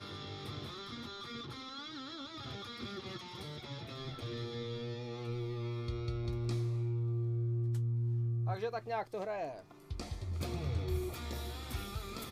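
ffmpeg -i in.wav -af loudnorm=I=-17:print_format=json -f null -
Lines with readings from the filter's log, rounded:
"input_i" : "-39.4",
"input_tp" : "-23.9",
"input_lra" : "7.4",
"input_thresh" : "-49.5",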